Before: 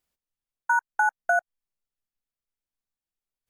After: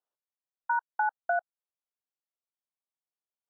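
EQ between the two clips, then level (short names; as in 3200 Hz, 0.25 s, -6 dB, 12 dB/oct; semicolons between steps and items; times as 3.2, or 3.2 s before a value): running mean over 20 samples; HPF 630 Hz 12 dB/oct; air absorption 87 m; 0.0 dB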